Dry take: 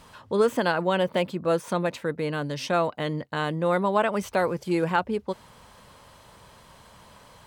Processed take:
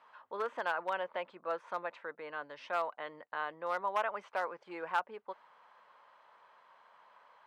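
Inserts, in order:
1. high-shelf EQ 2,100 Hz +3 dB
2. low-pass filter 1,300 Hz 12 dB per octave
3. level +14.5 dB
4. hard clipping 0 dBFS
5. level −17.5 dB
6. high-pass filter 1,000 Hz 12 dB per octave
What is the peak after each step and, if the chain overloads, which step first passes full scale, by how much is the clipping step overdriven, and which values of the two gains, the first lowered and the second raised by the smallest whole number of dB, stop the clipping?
−8.0, −9.5, +5.0, 0.0, −17.5, −19.5 dBFS
step 3, 5.0 dB
step 3 +9.5 dB, step 5 −12.5 dB

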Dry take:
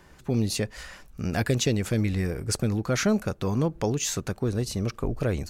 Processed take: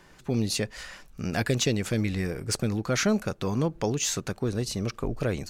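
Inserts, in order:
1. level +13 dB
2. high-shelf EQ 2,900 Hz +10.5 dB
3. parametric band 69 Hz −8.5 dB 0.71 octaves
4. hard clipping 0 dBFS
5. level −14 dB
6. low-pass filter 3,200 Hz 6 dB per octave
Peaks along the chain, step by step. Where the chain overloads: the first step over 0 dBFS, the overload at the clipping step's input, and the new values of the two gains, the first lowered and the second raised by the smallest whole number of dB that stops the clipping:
+0.5, +9.0, +9.0, 0.0, −14.0, −14.0 dBFS
step 1, 9.0 dB
step 1 +4 dB, step 5 −5 dB

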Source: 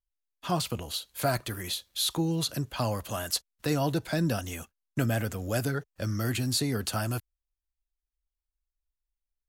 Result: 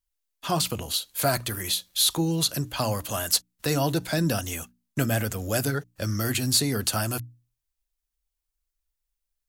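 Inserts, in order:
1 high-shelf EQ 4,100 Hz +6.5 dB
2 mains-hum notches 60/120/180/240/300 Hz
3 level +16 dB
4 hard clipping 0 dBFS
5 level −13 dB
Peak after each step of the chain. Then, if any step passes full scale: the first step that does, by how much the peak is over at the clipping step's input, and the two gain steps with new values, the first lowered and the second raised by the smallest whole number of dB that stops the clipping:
−10.5, −10.5, +5.5, 0.0, −13.0 dBFS
step 3, 5.5 dB
step 3 +10 dB, step 5 −7 dB

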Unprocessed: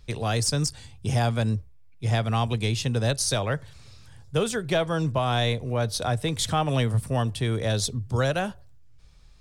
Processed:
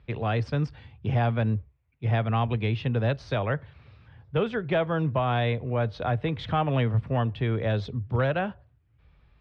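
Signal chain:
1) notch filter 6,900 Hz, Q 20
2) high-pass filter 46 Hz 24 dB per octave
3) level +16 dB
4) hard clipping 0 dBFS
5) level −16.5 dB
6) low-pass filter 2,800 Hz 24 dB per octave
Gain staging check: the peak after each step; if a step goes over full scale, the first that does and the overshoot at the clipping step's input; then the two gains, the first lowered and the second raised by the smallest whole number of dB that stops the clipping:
−11.5, −12.0, +4.0, 0.0, −16.5, −15.5 dBFS
step 3, 4.0 dB
step 3 +12 dB, step 5 −12.5 dB

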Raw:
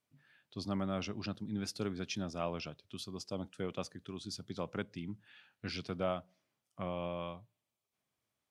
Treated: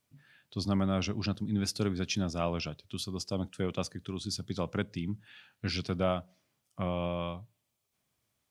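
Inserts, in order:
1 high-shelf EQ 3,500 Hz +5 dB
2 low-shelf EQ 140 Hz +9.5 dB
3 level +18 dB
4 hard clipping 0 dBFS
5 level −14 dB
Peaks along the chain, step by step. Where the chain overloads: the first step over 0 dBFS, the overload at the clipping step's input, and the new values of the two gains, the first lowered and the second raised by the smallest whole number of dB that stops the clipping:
−21.5, −20.0, −2.0, −2.0, −16.0 dBFS
no step passes full scale

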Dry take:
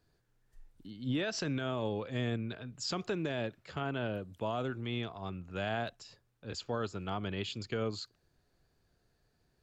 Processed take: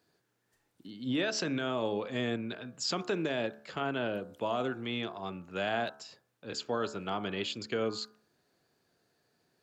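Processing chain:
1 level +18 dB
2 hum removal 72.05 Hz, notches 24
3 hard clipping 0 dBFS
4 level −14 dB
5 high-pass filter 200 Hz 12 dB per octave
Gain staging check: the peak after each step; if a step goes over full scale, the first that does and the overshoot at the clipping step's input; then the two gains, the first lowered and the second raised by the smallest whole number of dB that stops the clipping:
−6.0, −5.0, −5.0, −19.0, −20.0 dBFS
no step passes full scale

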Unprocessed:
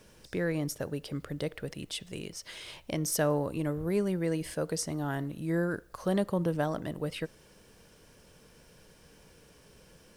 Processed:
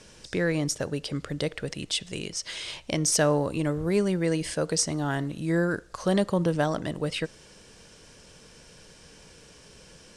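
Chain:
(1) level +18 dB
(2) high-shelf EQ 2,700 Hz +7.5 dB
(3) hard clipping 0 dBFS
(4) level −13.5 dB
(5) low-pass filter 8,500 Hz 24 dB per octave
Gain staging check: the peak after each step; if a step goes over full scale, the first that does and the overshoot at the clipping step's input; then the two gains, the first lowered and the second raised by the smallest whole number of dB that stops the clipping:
+1.5, +6.0, 0.0, −13.5, −12.5 dBFS
step 1, 6.0 dB
step 1 +12 dB, step 4 −7.5 dB

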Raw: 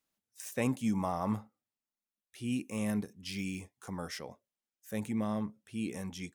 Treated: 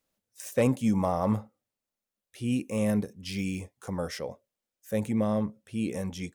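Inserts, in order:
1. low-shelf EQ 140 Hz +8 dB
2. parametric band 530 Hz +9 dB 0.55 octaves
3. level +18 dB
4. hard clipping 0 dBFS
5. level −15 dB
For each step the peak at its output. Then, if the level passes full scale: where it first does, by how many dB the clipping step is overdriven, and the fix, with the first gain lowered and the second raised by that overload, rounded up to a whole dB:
−18.0, −14.5, +3.5, 0.0, −15.0 dBFS
step 3, 3.5 dB
step 3 +14 dB, step 5 −11 dB

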